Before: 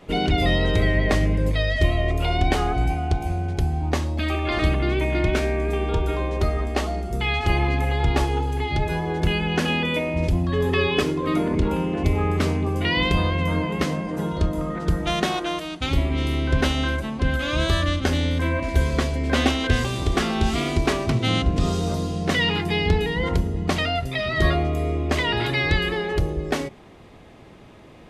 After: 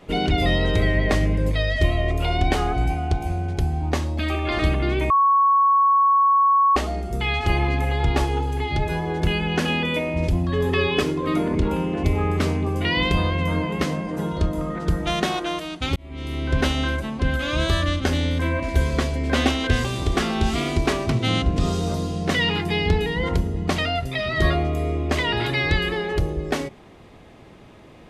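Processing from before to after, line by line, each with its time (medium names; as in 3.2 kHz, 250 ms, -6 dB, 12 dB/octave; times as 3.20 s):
5.10–6.76 s: bleep 1.11 kHz -13.5 dBFS
15.96–16.60 s: fade in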